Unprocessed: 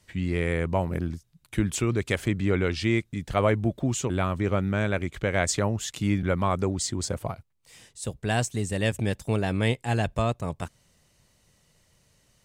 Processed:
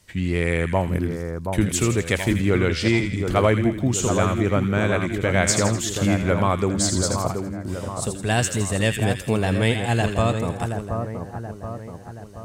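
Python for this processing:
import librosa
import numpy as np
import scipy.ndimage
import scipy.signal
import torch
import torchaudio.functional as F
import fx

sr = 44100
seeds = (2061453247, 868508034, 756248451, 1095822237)

p1 = fx.high_shelf(x, sr, hz=6300.0, db=4.5)
p2 = p1 + fx.echo_split(p1, sr, split_hz=1500.0, low_ms=727, high_ms=82, feedback_pct=52, wet_db=-6.0, dry=0)
y = p2 * librosa.db_to_amplitude(4.0)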